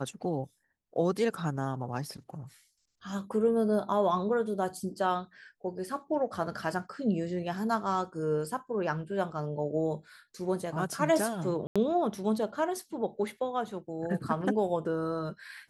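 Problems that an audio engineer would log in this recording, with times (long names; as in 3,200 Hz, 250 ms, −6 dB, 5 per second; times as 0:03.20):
0:11.67–0:11.76: drop-out 86 ms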